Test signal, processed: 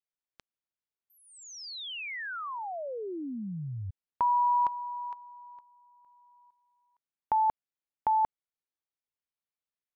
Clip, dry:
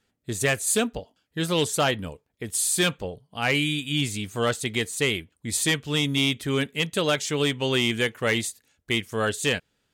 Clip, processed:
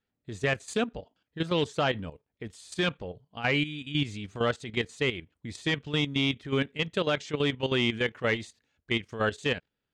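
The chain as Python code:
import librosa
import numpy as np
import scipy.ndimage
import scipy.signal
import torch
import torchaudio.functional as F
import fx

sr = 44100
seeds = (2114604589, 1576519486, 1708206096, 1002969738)

y = fx.level_steps(x, sr, step_db=12)
y = fx.air_absorb(y, sr, metres=150.0)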